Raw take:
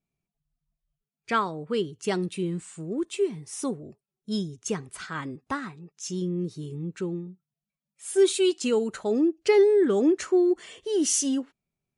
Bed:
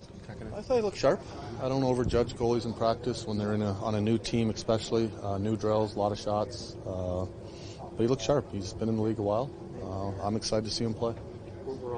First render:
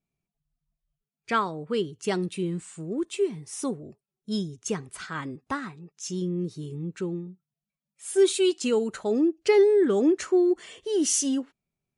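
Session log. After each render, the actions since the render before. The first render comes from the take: nothing audible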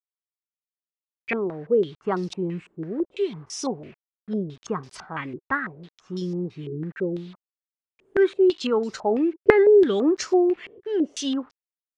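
bit-crush 9-bit; stepped low-pass 6 Hz 380–5300 Hz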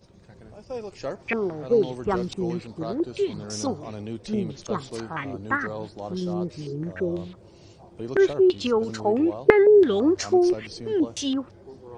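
add bed -7 dB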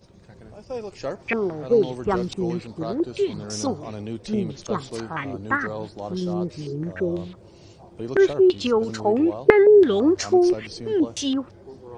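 gain +2 dB; limiter -1 dBFS, peak gain reduction 1 dB

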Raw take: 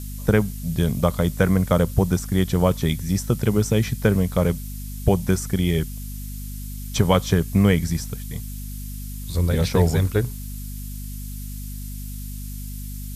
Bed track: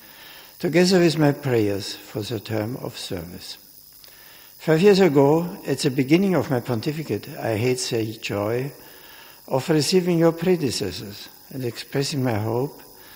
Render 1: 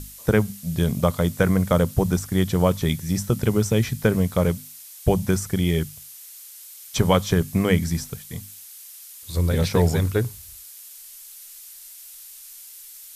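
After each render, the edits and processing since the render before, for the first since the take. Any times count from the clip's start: notches 50/100/150/200/250 Hz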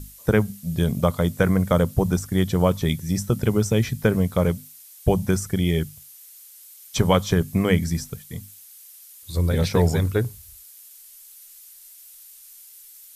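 denoiser 6 dB, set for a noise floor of -43 dBFS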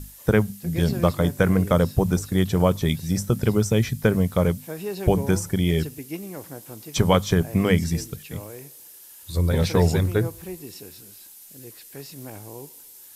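add bed track -16.5 dB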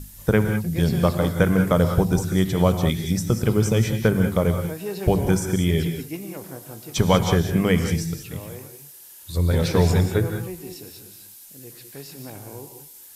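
non-linear reverb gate 0.22 s rising, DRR 6 dB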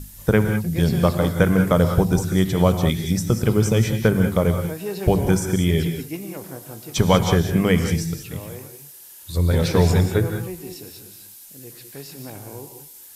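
gain +1.5 dB

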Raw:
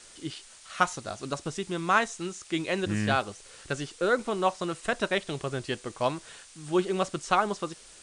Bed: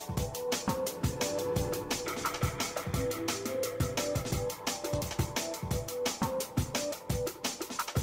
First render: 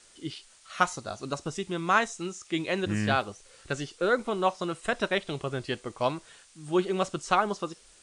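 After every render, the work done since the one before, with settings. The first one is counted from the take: noise print and reduce 6 dB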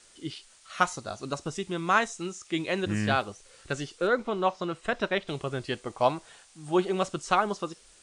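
4.07–5.28 air absorption 81 m; 5.86–6.95 bell 770 Hz +7 dB 0.64 oct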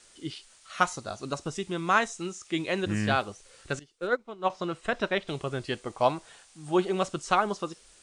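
3.79–4.5 upward expander 2.5:1, over -34 dBFS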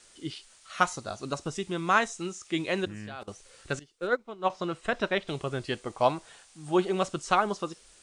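2.85–3.28 level quantiser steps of 20 dB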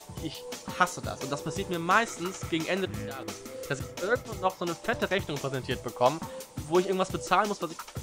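add bed -7 dB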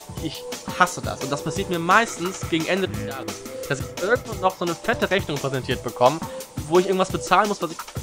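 gain +7 dB

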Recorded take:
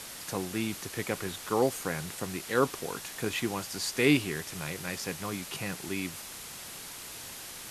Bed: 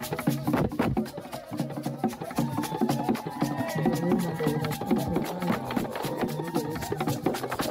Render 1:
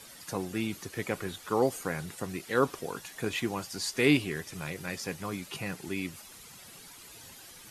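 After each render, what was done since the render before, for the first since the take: denoiser 11 dB, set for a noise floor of -44 dBFS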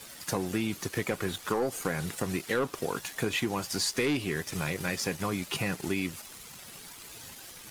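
sample leveller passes 2; compressor 6:1, threshold -26 dBFS, peak gain reduction 10.5 dB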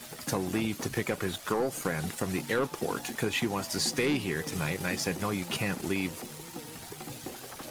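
add bed -15 dB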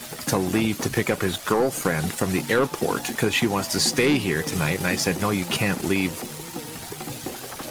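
gain +8 dB

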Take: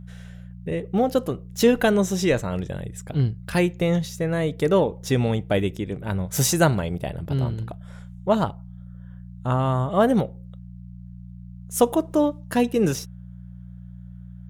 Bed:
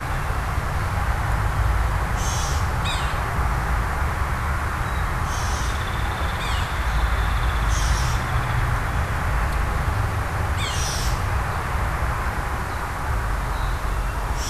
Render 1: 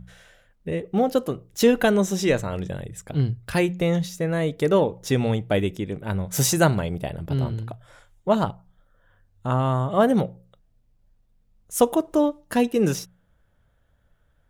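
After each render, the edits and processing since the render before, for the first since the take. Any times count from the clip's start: de-hum 60 Hz, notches 3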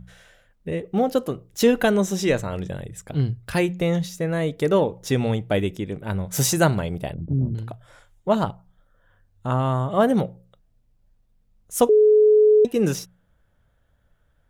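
7.14–7.55 synth low-pass 260 Hz, resonance Q 1.5; 11.89–12.65 bleep 426 Hz -11 dBFS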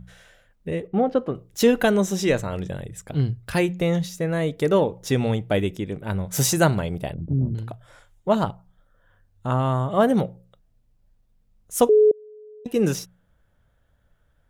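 0.87–1.35 LPF 2200 Hz; 12.11–12.66 flipped gate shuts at -25 dBFS, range -30 dB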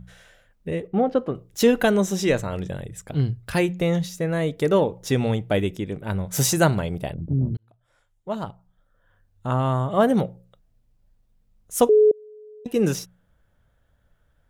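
7.57–9.66 fade in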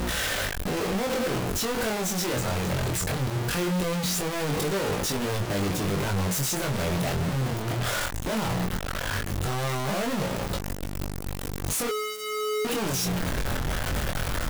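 infinite clipping; chorus 0.19 Hz, delay 20 ms, depth 3.3 ms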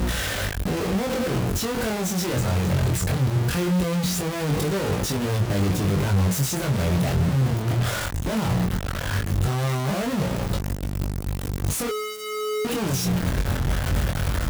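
HPF 51 Hz; low shelf 180 Hz +11 dB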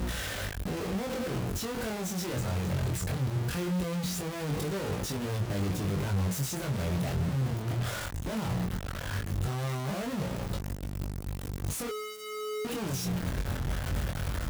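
gain -8.5 dB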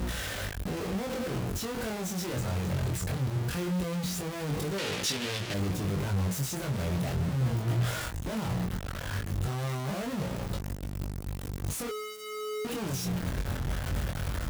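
4.78–5.54 weighting filter D; 7.39–8.15 doubler 17 ms -4 dB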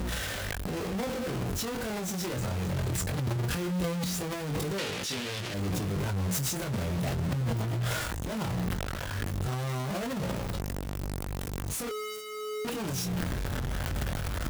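limiter -24.5 dBFS, peak gain reduction 5 dB; transient shaper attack -5 dB, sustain +10 dB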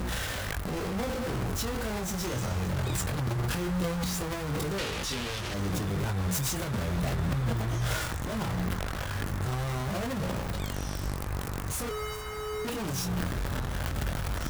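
add bed -16.5 dB

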